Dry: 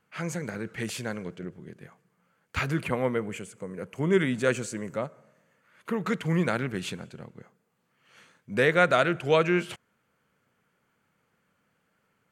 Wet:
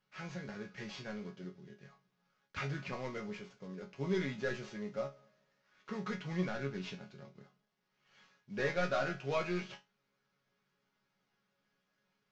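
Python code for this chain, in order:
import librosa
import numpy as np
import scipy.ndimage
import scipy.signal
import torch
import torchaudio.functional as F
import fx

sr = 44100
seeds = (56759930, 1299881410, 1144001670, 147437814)

y = fx.cvsd(x, sr, bps=32000)
y = fx.resonator_bank(y, sr, root=49, chord='sus4', decay_s=0.23)
y = y * librosa.db_to_amplitude(3.5)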